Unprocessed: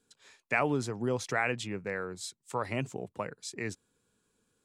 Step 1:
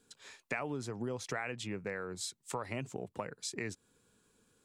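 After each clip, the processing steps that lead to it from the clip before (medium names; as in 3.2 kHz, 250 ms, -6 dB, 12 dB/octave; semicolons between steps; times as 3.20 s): compression 4:1, threshold -41 dBFS, peak gain reduction 15.5 dB; trim +4.5 dB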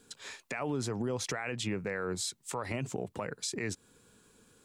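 peak limiter -32.5 dBFS, peak gain reduction 11.5 dB; trim +8 dB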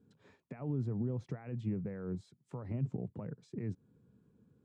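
band-pass filter 140 Hz, Q 1.4; trim +4 dB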